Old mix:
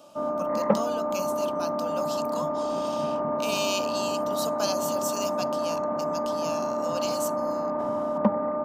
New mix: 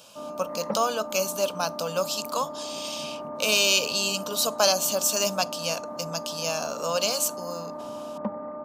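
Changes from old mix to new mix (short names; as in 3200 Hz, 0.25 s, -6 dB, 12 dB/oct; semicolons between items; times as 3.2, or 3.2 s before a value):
speech +9.5 dB; background -8.5 dB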